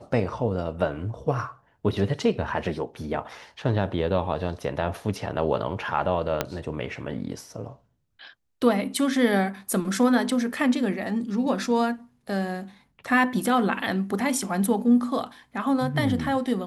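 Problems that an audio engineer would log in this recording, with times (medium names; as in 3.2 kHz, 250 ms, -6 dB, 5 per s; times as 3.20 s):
6.41 s: pop -8 dBFS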